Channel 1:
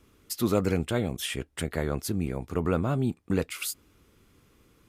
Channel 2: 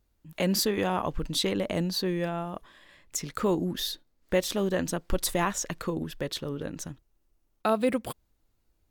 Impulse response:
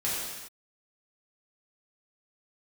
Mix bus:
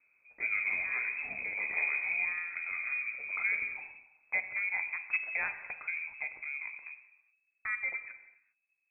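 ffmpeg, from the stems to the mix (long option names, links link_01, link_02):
-filter_complex "[0:a]volume=-13.5dB,afade=type=out:start_time=1.96:duration=0.38:silence=0.421697,asplit=2[link_01][link_02];[link_02]volume=-6.5dB[link_03];[1:a]volume=-13.5dB,asplit=2[link_04][link_05];[link_05]volume=-15.5dB[link_06];[2:a]atrim=start_sample=2205[link_07];[link_03][link_06]amix=inputs=2:normalize=0[link_08];[link_08][link_07]afir=irnorm=-1:irlink=0[link_09];[link_01][link_04][link_09]amix=inputs=3:normalize=0,equalizer=frequency=1300:width=1.1:gain=-4.5,dynaudnorm=framelen=310:gausssize=11:maxgain=6dB,lowpass=frequency=2200:width_type=q:width=0.5098,lowpass=frequency=2200:width_type=q:width=0.6013,lowpass=frequency=2200:width_type=q:width=0.9,lowpass=frequency=2200:width_type=q:width=2.563,afreqshift=-2600"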